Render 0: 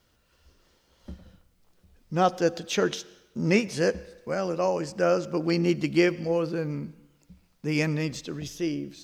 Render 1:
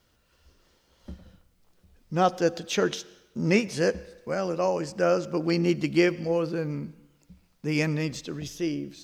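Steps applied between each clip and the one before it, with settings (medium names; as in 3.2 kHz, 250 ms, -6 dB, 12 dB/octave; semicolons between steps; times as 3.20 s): no audible change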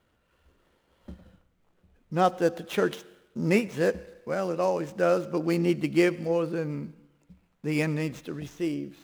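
median filter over 9 samples; bass shelf 86 Hz -6.5 dB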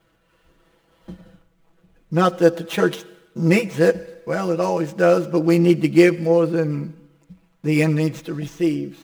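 comb 6.1 ms, depth 94%; trim +4.5 dB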